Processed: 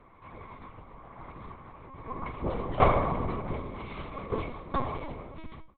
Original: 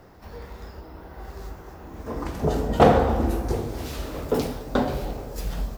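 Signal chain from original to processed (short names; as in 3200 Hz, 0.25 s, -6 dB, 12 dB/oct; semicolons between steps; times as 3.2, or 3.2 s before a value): ending faded out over 0.51 s; small resonant body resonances 1100/2200 Hz, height 17 dB, ringing for 35 ms; LPC vocoder at 8 kHz pitch kept; gain -8.5 dB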